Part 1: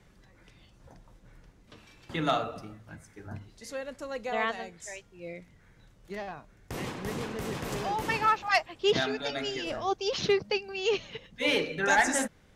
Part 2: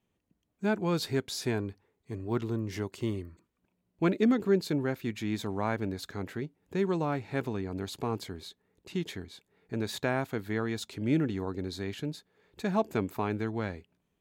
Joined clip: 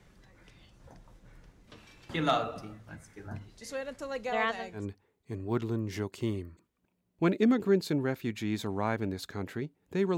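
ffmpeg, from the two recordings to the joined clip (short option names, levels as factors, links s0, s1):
-filter_complex "[0:a]apad=whole_dur=10.17,atrim=end=10.17,atrim=end=4.86,asetpts=PTS-STARTPTS[s0];[1:a]atrim=start=1.52:end=6.97,asetpts=PTS-STARTPTS[s1];[s0][s1]acrossfade=d=0.14:c1=tri:c2=tri"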